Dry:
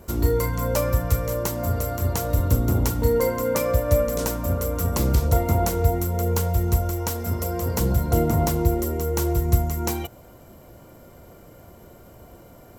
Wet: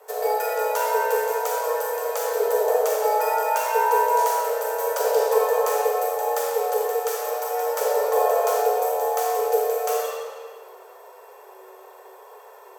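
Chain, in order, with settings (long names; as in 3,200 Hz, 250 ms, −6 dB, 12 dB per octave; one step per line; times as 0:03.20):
comb and all-pass reverb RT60 1.8 s, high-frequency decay 0.85×, pre-delay 0 ms, DRR −4 dB
frequency shifter +380 Hz
level −4.5 dB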